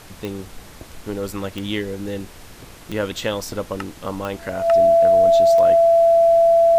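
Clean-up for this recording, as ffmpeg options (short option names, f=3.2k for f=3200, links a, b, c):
-af "adeclick=t=4,bandreject=f=670:w=30,afftdn=nr=22:nf=-41"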